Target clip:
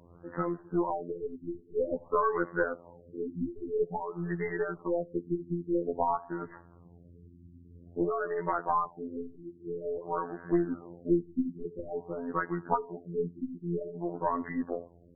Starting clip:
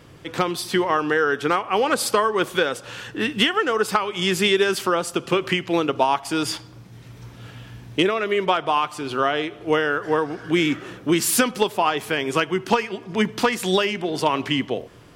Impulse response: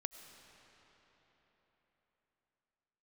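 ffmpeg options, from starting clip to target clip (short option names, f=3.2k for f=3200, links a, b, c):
-af "afftfilt=real='hypot(re,im)*cos(PI*b)':imag='0':win_size=2048:overlap=0.75,aeval=exprs='1*(cos(1*acos(clip(val(0)/1,-1,1)))-cos(1*PI/2))+0.02*(cos(2*acos(clip(val(0)/1,-1,1)))-cos(2*PI/2))+0.112*(cos(3*acos(clip(val(0)/1,-1,1)))-cos(3*PI/2))+0.0891*(cos(4*acos(clip(val(0)/1,-1,1)))-cos(4*PI/2))+0.0112*(cos(8*acos(clip(val(0)/1,-1,1)))-cos(8*PI/2))':c=same,afftfilt=real='re*lt(b*sr/1024,370*pow(2100/370,0.5+0.5*sin(2*PI*0.5*pts/sr)))':imag='im*lt(b*sr/1024,370*pow(2100/370,0.5+0.5*sin(2*PI*0.5*pts/sr)))':win_size=1024:overlap=0.75,volume=-1dB"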